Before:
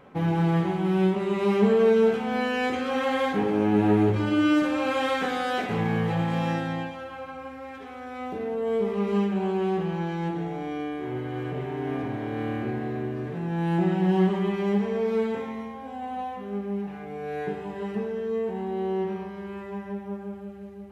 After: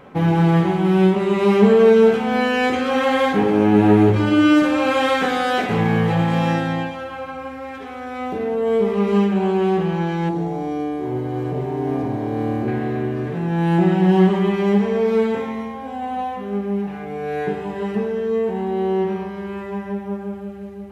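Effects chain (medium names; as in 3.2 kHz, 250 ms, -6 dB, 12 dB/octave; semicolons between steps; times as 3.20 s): 10.29–12.68 s: high-order bell 2.1 kHz -8.5 dB; trim +7.5 dB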